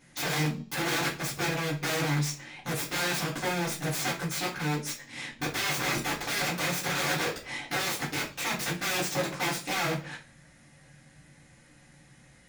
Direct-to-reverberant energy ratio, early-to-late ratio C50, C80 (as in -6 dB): -7.0 dB, 10.0 dB, 16.5 dB